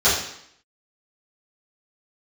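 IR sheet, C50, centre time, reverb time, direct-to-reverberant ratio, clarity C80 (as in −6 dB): 3.0 dB, 48 ms, 0.70 s, −12.5 dB, 6.5 dB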